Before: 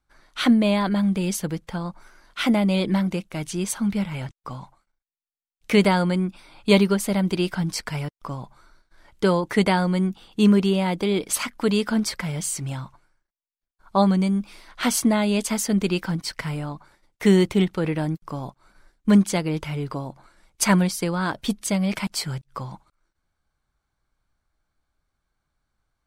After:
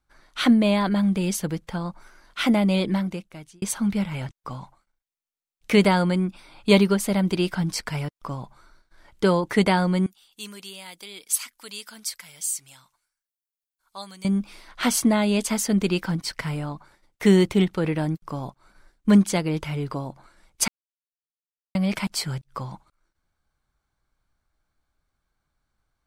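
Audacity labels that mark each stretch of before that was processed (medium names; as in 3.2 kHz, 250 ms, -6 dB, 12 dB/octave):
2.760000	3.620000	fade out
10.060000	14.250000	pre-emphasis filter coefficient 0.97
20.680000	21.750000	mute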